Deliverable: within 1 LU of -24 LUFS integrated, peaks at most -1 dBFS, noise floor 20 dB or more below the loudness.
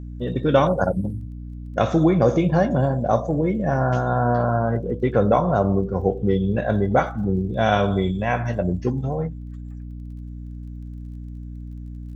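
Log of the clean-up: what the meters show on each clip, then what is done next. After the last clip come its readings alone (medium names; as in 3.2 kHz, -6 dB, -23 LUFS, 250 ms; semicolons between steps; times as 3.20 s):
tick rate 22 per s; hum 60 Hz; highest harmonic 300 Hz; hum level -31 dBFS; loudness -21.5 LUFS; peak level -4.5 dBFS; loudness target -24.0 LUFS
-> de-click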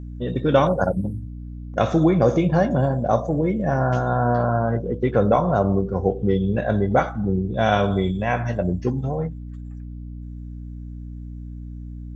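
tick rate 0 per s; hum 60 Hz; highest harmonic 300 Hz; hum level -31 dBFS
-> hum notches 60/120/180/240/300 Hz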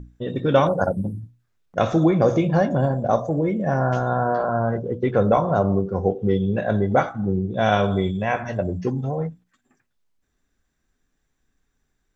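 hum not found; loudness -22.0 LUFS; peak level -4.0 dBFS; loudness target -24.0 LUFS
-> trim -2 dB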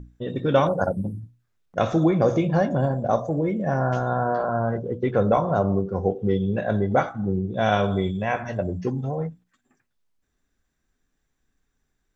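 loudness -24.0 LUFS; peak level -6.0 dBFS; noise floor -75 dBFS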